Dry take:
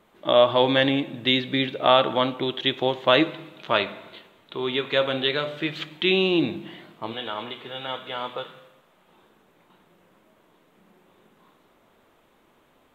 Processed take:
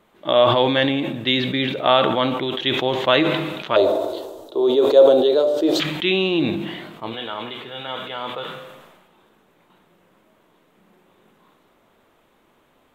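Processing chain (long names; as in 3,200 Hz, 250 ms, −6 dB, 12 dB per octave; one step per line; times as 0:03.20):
0:03.76–0:05.80: drawn EQ curve 100 Hz 0 dB, 160 Hz −20 dB, 320 Hz +9 dB, 620 Hz +11 dB, 2,200 Hz −21 dB, 5,100 Hz +6 dB
level that may fall only so fast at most 42 dB per second
level +1 dB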